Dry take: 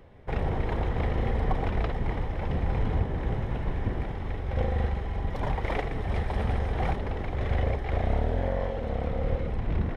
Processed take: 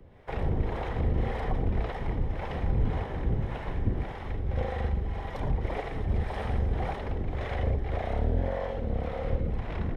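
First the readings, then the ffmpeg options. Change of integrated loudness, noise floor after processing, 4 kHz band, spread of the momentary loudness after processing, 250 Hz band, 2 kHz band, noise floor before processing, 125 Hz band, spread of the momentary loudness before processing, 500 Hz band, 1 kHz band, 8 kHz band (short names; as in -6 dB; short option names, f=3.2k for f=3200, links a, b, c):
-1.5 dB, -37 dBFS, -2.5 dB, 4 LU, -1.5 dB, -3.0 dB, -33 dBFS, -1.5 dB, 4 LU, -2.0 dB, -2.5 dB, n/a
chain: -filter_complex "[0:a]acrossover=split=200|690[a][b][c];[c]alimiter=level_in=8.5dB:limit=-24dB:level=0:latency=1:release=33,volume=-8.5dB[d];[a][b][d]amix=inputs=3:normalize=0,acrossover=split=450[e][f];[e]aeval=exprs='val(0)*(1-0.7/2+0.7/2*cos(2*PI*1.8*n/s))':c=same[g];[f]aeval=exprs='val(0)*(1-0.7/2-0.7/2*cos(2*PI*1.8*n/s))':c=same[h];[g][h]amix=inputs=2:normalize=0,volume=2dB"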